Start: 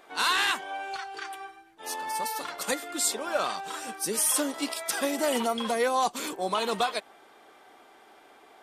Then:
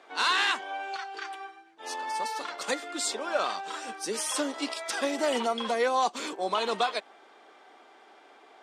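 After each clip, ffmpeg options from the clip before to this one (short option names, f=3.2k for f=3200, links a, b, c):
-filter_complex "[0:a]acrossover=split=200 7900:gain=0.0794 1 0.0631[a][b][c];[a][b][c]amix=inputs=3:normalize=0"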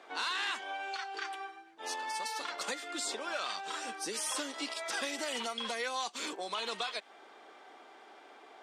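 -filter_complex "[0:a]acrossover=split=1600[a][b];[a]acompressor=threshold=-39dB:ratio=6[c];[b]alimiter=level_in=3.5dB:limit=-24dB:level=0:latency=1:release=59,volume=-3.5dB[d];[c][d]amix=inputs=2:normalize=0"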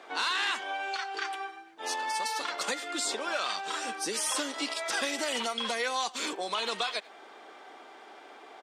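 -filter_complex "[0:a]asplit=2[a][b];[b]adelay=90,highpass=300,lowpass=3.4k,asoftclip=type=hard:threshold=-32dB,volume=-20dB[c];[a][c]amix=inputs=2:normalize=0,volume=5dB"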